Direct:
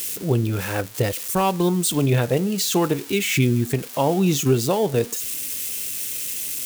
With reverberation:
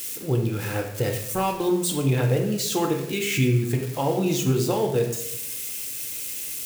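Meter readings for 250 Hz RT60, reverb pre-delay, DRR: 0.95 s, 4 ms, 2.0 dB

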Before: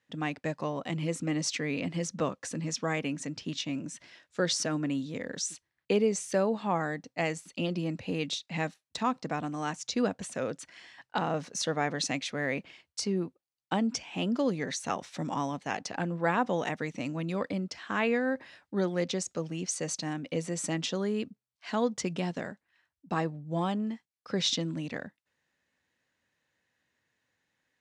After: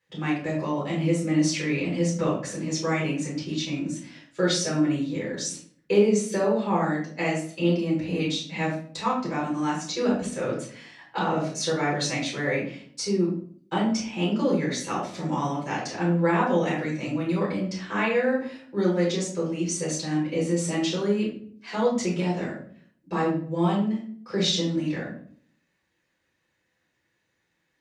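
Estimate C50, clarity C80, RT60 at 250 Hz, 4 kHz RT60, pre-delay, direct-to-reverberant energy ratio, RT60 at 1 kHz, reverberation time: 4.5 dB, 9.5 dB, 0.75 s, 0.35 s, 5 ms, -5.5 dB, 0.45 s, 0.50 s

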